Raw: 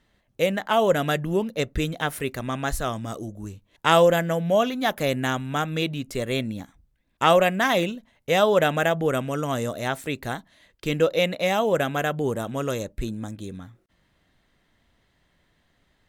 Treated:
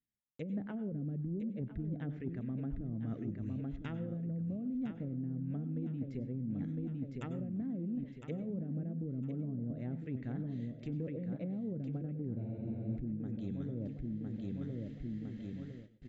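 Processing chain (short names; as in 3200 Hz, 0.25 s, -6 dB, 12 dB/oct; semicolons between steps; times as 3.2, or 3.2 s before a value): low shelf 140 Hz +4 dB; limiter -14.5 dBFS, peak gain reduction 11 dB; treble ducked by the level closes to 300 Hz, closed at -21 dBFS; ten-band EQ 125 Hz +8 dB, 250 Hz +11 dB, 1000 Hz -11 dB, 2000 Hz +6 dB; feedback echo 1.008 s, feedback 33%, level -9 dB; gate -47 dBFS, range -38 dB; reverse; compressor 12:1, threshold -36 dBFS, peak gain reduction 23 dB; reverse; brick-wall FIR low-pass 7700 Hz; on a send at -14 dB: reverb, pre-delay 91 ms; on the sum: spectral freeze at 12.39, 0.58 s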